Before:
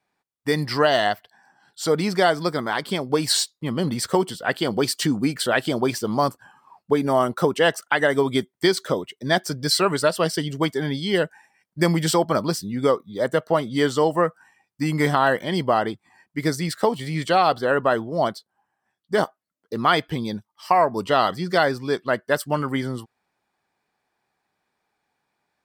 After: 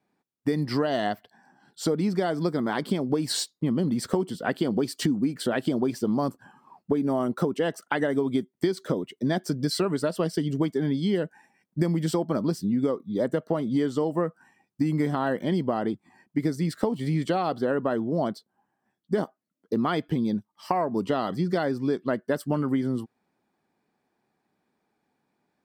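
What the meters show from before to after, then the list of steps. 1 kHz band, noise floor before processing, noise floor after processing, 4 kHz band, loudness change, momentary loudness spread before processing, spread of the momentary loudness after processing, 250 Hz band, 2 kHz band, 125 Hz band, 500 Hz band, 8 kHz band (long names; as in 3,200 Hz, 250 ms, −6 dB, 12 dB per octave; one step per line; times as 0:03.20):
−9.5 dB, −79 dBFS, −79 dBFS, −10.5 dB, −5.0 dB, 7 LU, 4 LU, 0.0 dB, −11.0 dB, −2.0 dB, −6.0 dB, −9.0 dB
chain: parametric band 240 Hz +14 dB 2.2 octaves
downward compressor, threshold −17 dBFS, peak gain reduction 12.5 dB
level −5 dB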